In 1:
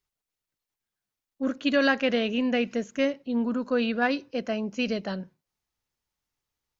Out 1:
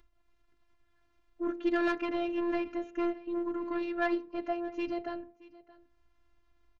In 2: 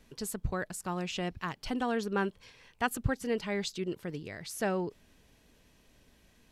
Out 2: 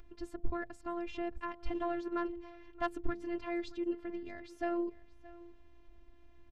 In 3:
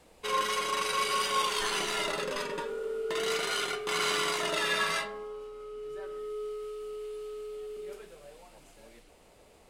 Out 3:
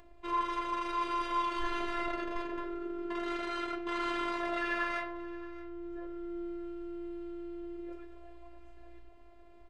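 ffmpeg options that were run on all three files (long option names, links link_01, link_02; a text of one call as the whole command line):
ffmpeg -i in.wav -filter_complex "[0:a]aeval=exprs='0.316*(cos(1*acos(clip(val(0)/0.316,-1,1)))-cos(1*PI/2))+0.00398*(cos(6*acos(clip(val(0)/0.316,-1,1)))-cos(6*PI/2))':channel_layout=same,lowpass=1800,lowshelf=frequency=150:gain=11.5,asoftclip=type=tanh:threshold=-18dB,acompressor=mode=upward:threshold=-49dB:ratio=2.5,bandreject=frequency=129.3:width_type=h:width=4,bandreject=frequency=258.6:width_type=h:width=4,bandreject=frequency=387.9:width_type=h:width=4,bandreject=frequency=517.2:width_type=h:width=4,bandreject=frequency=646.5:width_type=h:width=4,afftfilt=real='hypot(re,im)*cos(PI*b)':imag='0':win_size=512:overlap=0.75,asplit=2[link_01][link_02];[link_02]aecho=0:1:624:0.0944[link_03];[link_01][link_03]amix=inputs=2:normalize=0,crystalizer=i=1.5:c=0" out.wav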